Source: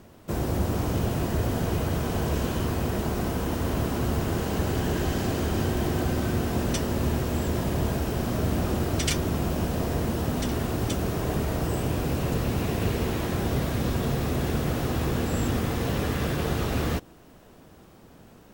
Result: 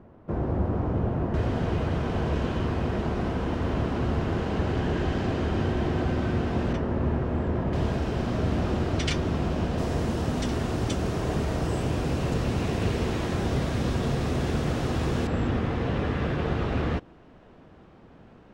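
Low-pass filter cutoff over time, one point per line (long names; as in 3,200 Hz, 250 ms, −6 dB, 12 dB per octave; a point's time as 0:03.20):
1,300 Hz
from 0:01.34 3,300 Hz
from 0:06.73 1,700 Hz
from 0:07.73 4,300 Hz
from 0:09.78 7,100 Hz
from 0:15.27 2,800 Hz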